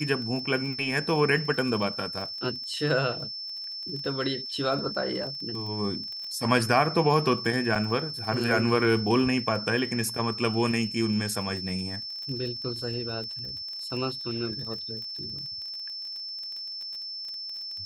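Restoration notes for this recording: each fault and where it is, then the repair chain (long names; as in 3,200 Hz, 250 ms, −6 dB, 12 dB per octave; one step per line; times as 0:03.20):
surface crackle 24 per second −35 dBFS
whistle 5,300 Hz −34 dBFS
0:07.75–0:07.76: drop-out 5.8 ms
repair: click removal
notch filter 5,300 Hz, Q 30
repair the gap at 0:07.75, 5.8 ms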